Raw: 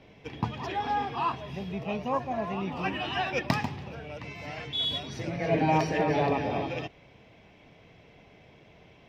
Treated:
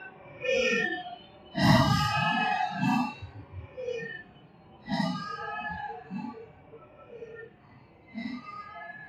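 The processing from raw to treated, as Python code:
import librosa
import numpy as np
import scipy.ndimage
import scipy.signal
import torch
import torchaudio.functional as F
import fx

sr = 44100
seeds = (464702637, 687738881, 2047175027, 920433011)

y = fx.hum_notches(x, sr, base_hz=50, count=2)
y = fx.echo_feedback(y, sr, ms=390, feedback_pct=58, wet_db=-6.5)
y = fx.paulstretch(y, sr, seeds[0], factor=8.4, window_s=0.05, from_s=3.3)
y = fx.noise_reduce_blind(y, sr, reduce_db=18)
y = fx.env_lowpass(y, sr, base_hz=1600.0, full_db=-24.0)
y = y * librosa.db_to_amplitude(2.5)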